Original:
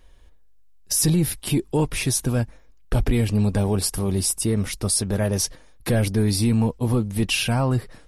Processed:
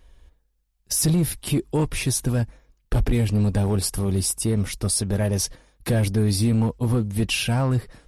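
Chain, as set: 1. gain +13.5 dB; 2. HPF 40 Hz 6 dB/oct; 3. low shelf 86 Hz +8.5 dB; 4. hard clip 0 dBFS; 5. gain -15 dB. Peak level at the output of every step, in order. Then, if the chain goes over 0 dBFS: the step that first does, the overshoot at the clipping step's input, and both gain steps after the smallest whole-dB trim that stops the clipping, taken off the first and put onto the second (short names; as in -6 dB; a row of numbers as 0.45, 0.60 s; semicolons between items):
+2.0, +2.5, +6.0, 0.0, -15.0 dBFS; step 1, 6.0 dB; step 1 +7.5 dB, step 5 -9 dB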